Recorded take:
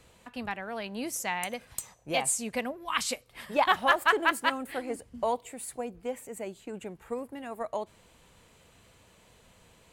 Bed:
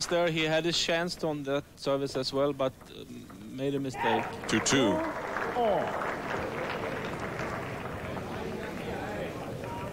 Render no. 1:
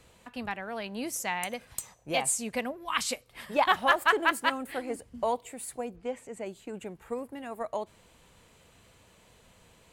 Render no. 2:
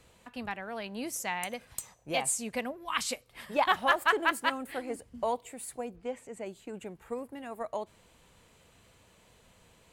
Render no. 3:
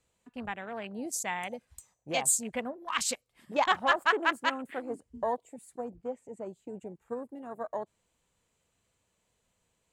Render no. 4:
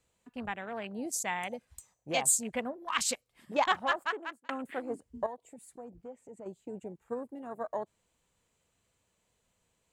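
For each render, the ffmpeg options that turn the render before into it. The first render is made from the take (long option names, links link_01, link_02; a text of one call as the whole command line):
ffmpeg -i in.wav -filter_complex "[0:a]asettb=1/sr,asplit=3[link_01][link_02][link_03];[link_01]atrim=end=5.964[link_04];[link_02]atrim=start=5.96:end=6.46,asetpts=PTS-STARTPTS,afade=type=in:duration=0.004:curve=qsin,afade=type=out:start_time=0.496:duration=0.004:curve=qsin,lowpass=6600[link_05];[link_03]atrim=start=6.456[link_06];[link_04][link_05]acrossfade=duration=0.004:curve1=hsin:curve2=qsin[link_07];[link_07][link_06]acrossfade=duration=0.004:curve1=qsin:curve2=hsin" out.wav
ffmpeg -i in.wav -af "volume=-2dB" out.wav
ffmpeg -i in.wav -af "afwtdn=0.00891,equalizer=frequency=7300:width_type=o:width=0.68:gain=7" out.wav
ffmpeg -i in.wav -filter_complex "[0:a]asettb=1/sr,asplit=3[link_01][link_02][link_03];[link_01]atrim=end=5.264[link_04];[link_02]atrim=start=5.26:end=6.46,asetpts=PTS-STARTPTS,afade=type=in:duration=0.004:curve=qsin,afade=type=out:start_time=1.196:duration=0.004:curve=qsin,acompressor=threshold=-48dB:ratio=2:attack=3.2:release=140:knee=1:detection=peak[link_05];[link_03]atrim=start=6.456[link_06];[link_04][link_05]acrossfade=duration=0.004:curve1=hsin:curve2=qsin[link_07];[link_07][link_06]acrossfade=duration=0.004:curve1=qsin:curve2=hsin,asplit=2[link_08][link_09];[link_08]atrim=end=4.49,asetpts=PTS-STARTPTS,afade=type=out:start_time=3.52:duration=0.97[link_10];[link_09]atrim=start=4.49,asetpts=PTS-STARTPTS,afade=type=in:duration=0.004:curve=hsin[link_11];[link_10][link_11]concat=n=2:v=0:a=1" out.wav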